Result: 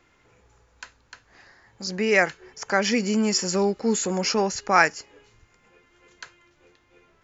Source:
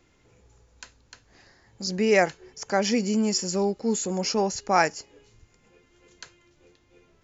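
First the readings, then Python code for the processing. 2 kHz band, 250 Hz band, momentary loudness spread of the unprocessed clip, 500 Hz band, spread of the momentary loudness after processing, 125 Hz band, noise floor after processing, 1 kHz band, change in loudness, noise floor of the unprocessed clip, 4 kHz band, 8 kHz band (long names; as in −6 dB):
+6.0 dB, +1.0 dB, 9 LU, +0.5 dB, 11 LU, +0.5 dB, −63 dBFS, +1.5 dB, +2.0 dB, −63 dBFS, +2.5 dB, can't be measured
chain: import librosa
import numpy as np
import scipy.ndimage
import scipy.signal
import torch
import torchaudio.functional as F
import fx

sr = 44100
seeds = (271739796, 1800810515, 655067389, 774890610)

y = fx.peak_eq(x, sr, hz=1400.0, db=9.5, octaves=2.3)
y = fx.rider(y, sr, range_db=3, speed_s=2.0)
y = fx.dynamic_eq(y, sr, hz=790.0, q=1.2, threshold_db=-31.0, ratio=4.0, max_db=-6)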